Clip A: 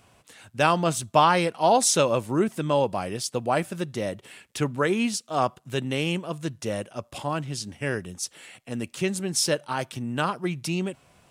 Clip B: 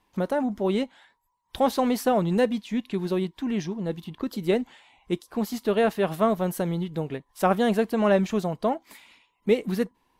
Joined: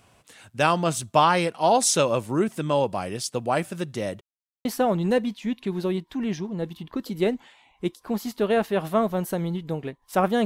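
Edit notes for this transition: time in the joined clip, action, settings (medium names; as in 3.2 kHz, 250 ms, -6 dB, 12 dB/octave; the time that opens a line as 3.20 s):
clip A
4.21–4.65 s: mute
4.65 s: go over to clip B from 1.92 s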